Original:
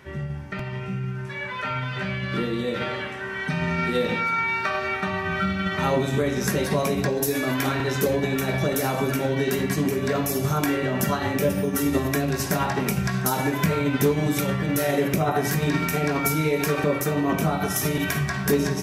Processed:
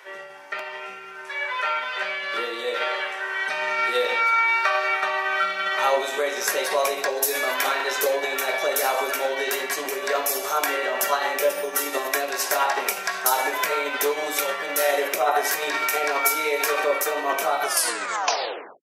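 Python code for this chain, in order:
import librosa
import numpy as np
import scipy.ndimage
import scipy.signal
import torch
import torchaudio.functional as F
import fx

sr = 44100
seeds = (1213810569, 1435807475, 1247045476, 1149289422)

y = fx.tape_stop_end(x, sr, length_s=1.2)
y = scipy.signal.sosfilt(scipy.signal.butter(4, 510.0, 'highpass', fs=sr, output='sos'), y)
y = y * librosa.db_to_amplitude(4.5)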